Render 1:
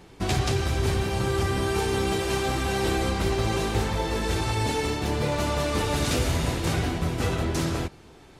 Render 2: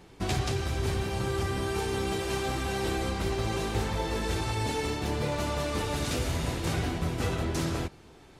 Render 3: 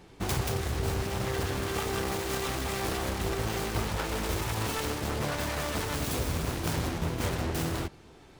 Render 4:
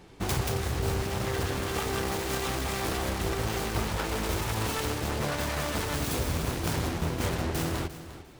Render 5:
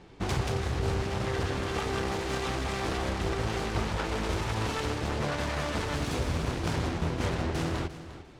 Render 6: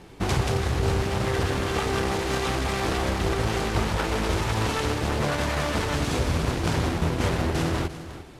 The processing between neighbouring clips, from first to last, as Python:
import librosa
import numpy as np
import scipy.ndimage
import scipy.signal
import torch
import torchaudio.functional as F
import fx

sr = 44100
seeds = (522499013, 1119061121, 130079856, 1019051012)

y1 = fx.rider(x, sr, range_db=10, speed_s=0.5)
y1 = F.gain(torch.from_numpy(y1), -4.5).numpy()
y2 = fx.self_delay(y1, sr, depth_ms=0.87)
y3 = fx.echo_feedback(y2, sr, ms=350, feedback_pct=22, wet_db=-14.0)
y3 = F.gain(torch.from_numpy(y3), 1.0).numpy()
y4 = fx.air_absorb(y3, sr, metres=70.0)
y5 = fx.cvsd(y4, sr, bps=64000)
y5 = F.gain(torch.from_numpy(y5), 5.5).numpy()